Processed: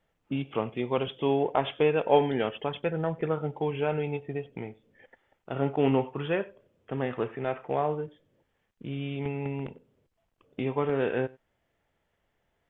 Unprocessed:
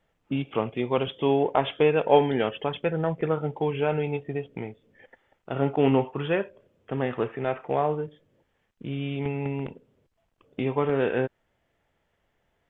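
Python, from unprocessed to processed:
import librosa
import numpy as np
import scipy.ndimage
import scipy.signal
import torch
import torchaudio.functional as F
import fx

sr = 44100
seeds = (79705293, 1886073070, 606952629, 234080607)

y = x + 10.0 ** (-24.0 / 20.0) * np.pad(x, (int(95 * sr / 1000.0), 0))[:len(x)]
y = F.gain(torch.from_numpy(y), -3.0).numpy()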